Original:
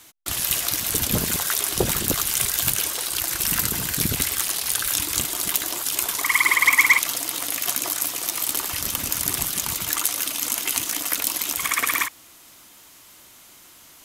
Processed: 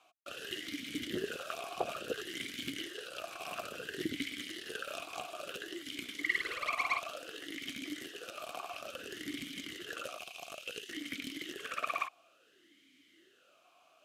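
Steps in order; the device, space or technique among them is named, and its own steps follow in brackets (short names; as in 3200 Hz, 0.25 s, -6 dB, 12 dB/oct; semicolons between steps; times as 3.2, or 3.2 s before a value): 10.18–10.89 steep high-pass 2100 Hz; talk box (tube stage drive 13 dB, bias 0.75; vowel sweep a-i 0.58 Hz); gain +5 dB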